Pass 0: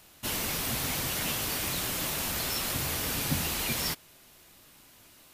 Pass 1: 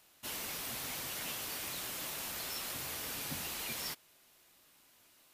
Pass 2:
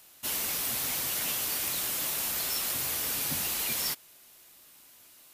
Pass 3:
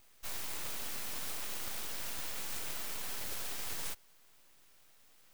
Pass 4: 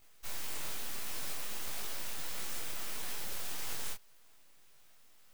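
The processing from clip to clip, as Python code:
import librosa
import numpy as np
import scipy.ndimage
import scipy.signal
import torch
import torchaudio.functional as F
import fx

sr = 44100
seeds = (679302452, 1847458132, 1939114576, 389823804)

y1 = fx.low_shelf(x, sr, hz=220.0, db=-10.5)
y1 = y1 * librosa.db_to_amplitude(-8.5)
y2 = fx.high_shelf(y1, sr, hz=5900.0, db=7.5)
y2 = y2 * librosa.db_to_amplitude(5.0)
y3 = np.abs(y2)
y3 = y3 * librosa.db_to_amplitude(-6.0)
y4 = fx.detune_double(y3, sr, cents=57)
y4 = y4 * librosa.db_to_amplitude(3.5)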